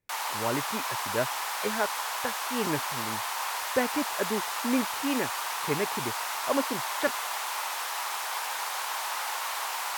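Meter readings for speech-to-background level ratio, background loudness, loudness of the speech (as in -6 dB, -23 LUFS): -2.5 dB, -31.0 LUFS, -33.5 LUFS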